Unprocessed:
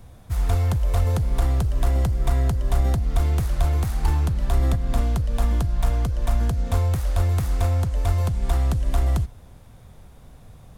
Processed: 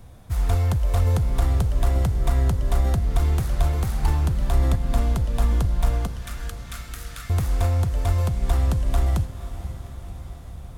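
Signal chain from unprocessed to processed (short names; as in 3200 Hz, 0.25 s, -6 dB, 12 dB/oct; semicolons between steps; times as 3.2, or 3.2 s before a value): 6.07–7.3 steep high-pass 1200 Hz 96 dB/oct; diffused feedback echo 0.532 s, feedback 66%, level -13 dB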